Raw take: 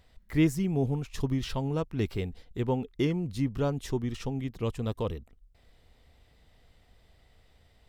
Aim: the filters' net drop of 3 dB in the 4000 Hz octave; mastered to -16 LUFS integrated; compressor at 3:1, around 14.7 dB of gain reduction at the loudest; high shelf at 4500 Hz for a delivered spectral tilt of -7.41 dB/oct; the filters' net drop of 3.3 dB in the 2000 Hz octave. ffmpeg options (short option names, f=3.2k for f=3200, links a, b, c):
-af "equalizer=f=2k:t=o:g=-3.5,equalizer=f=4k:t=o:g=-7,highshelf=f=4.5k:g=8,acompressor=threshold=-39dB:ratio=3,volume=25dB"